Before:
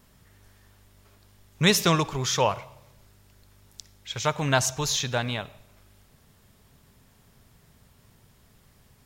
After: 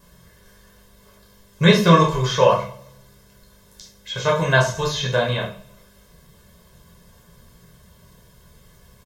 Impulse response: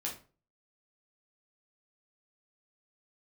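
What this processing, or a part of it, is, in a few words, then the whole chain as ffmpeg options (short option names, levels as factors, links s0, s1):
microphone above a desk: -filter_complex "[0:a]aecho=1:1:1.9:0.8[s0];[1:a]atrim=start_sample=2205[s1];[s0][s1]afir=irnorm=-1:irlink=0,acrossover=split=3500[s2][s3];[s3]acompressor=threshold=0.00891:ratio=4:attack=1:release=60[s4];[s2][s4]amix=inputs=2:normalize=0,equalizer=f=100:t=o:w=0.33:g=-9,equalizer=f=200:t=o:w=0.33:g=11,equalizer=f=2500:t=o:w=0.33:g=-5,volume=1.68"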